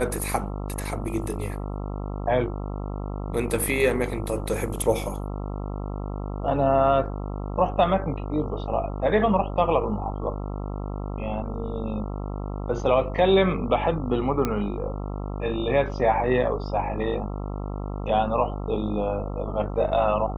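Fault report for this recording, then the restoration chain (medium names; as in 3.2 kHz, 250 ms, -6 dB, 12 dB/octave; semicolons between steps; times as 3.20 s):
buzz 50 Hz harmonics 27 -31 dBFS
14.45 s: pop -11 dBFS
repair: de-click; de-hum 50 Hz, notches 27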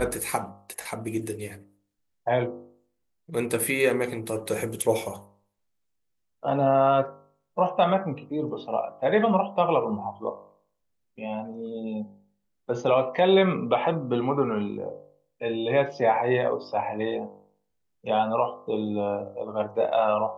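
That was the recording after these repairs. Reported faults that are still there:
nothing left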